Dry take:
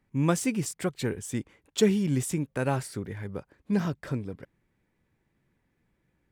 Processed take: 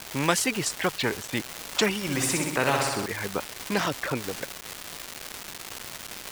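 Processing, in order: level-controlled noise filter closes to 980 Hz, open at -24 dBFS; high-pass 470 Hz 6 dB/octave; reverb removal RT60 1.6 s; low-pass 2 kHz 6 dB/octave; crackle 590 per s -47 dBFS; 2.02–3.06 s: flutter echo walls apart 10.9 m, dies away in 0.74 s; spectrum-flattening compressor 2:1; trim +7 dB

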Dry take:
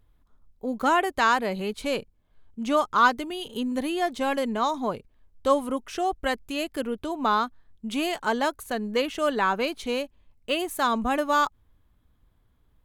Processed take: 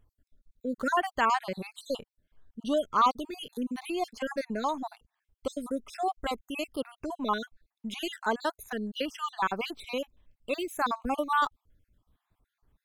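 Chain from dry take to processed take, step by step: random holes in the spectrogram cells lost 52%; trim -3 dB

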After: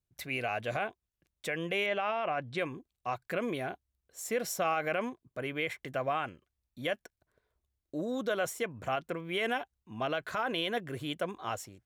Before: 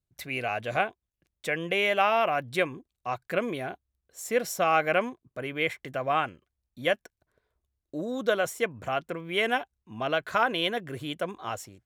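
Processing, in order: peak limiter -20 dBFS, peak gain reduction 10.5 dB; 1.86–2.58 s: distance through air 120 m; trim -2 dB

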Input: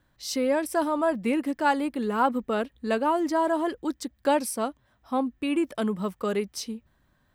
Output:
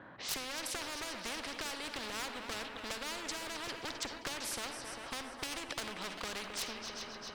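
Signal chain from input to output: Bessel high-pass 290 Hz, order 2; level-controlled noise filter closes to 1.7 kHz, open at -24 dBFS; low-pass 4.8 kHz 12 dB/octave; compression 6:1, threshold -33 dBFS, peak gain reduction 14.5 dB; one-sided clip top -35.5 dBFS; multi-head delay 132 ms, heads second and third, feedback 54%, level -19 dB; on a send at -15.5 dB: reverberation RT60 0.50 s, pre-delay 42 ms; on the sum: spectrum-flattening compressor 4:1; trim +4.5 dB

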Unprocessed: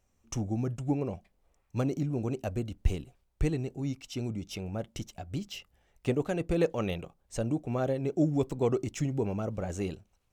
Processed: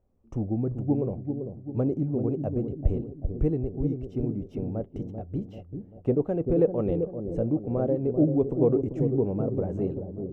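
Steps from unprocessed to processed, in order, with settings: FFT filter 120 Hz 0 dB, 480 Hz +3 dB, 4.7 kHz -29 dB; feedback echo behind a low-pass 390 ms, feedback 50%, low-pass 610 Hz, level -6 dB; trim +2.5 dB

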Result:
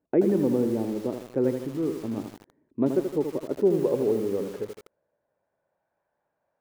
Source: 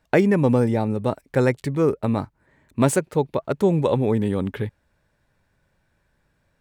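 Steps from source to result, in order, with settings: band-pass sweep 330 Hz -> 710 Hz, 3.48–5.89 s; 1.58–2.18 s: dynamic bell 470 Hz, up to -7 dB, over -35 dBFS, Q 0.85; bit-crushed delay 80 ms, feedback 55%, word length 7-bit, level -6.5 dB

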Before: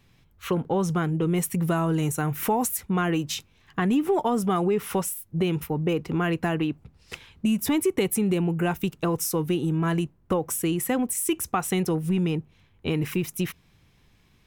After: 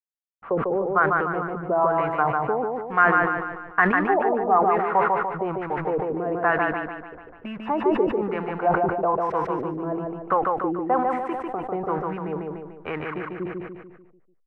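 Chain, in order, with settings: three-band isolator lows -21 dB, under 590 Hz, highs -18 dB, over 2.3 kHz; hysteresis with a dead band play -44.5 dBFS; LFO low-pass sine 1.1 Hz 380–1800 Hz; on a send: feedback delay 147 ms, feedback 48%, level -3 dB; on the sum: decay stretcher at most 54 dB/s; trim +7 dB

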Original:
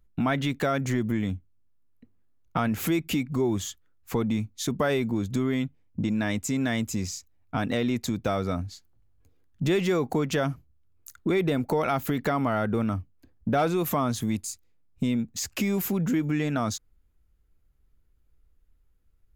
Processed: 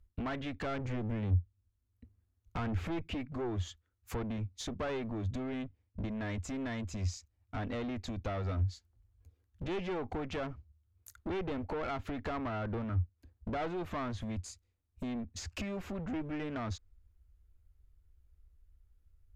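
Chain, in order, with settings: 0.60–3.03 s: tone controls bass +6 dB, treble +2 dB; one-sided clip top -29 dBFS; low-pass that closes with the level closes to 2.8 kHz, closed at -26.5 dBFS; saturation -23.5 dBFS, distortion -16 dB; resonant low shelf 110 Hz +7.5 dB, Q 3; trim -6 dB

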